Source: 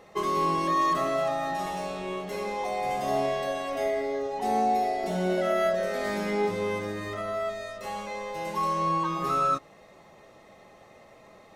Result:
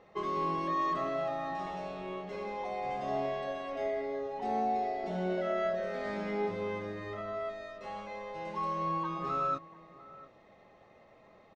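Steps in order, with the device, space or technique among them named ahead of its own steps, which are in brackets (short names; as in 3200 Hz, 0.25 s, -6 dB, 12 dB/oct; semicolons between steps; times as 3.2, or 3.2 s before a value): shout across a valley (air absorption 160 m; outdoor echo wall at 120 m, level -19 dB); gain -6 dB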